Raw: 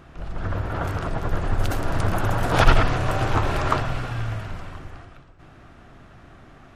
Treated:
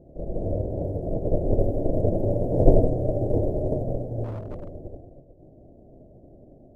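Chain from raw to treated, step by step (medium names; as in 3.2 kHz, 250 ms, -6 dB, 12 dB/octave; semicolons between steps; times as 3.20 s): formants flattened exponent 0.3; elliptic low-pass 600 Hz, stop band 50 dB; 4.24–4.75 s: overload inside the chain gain 33 dB; trim +4 dB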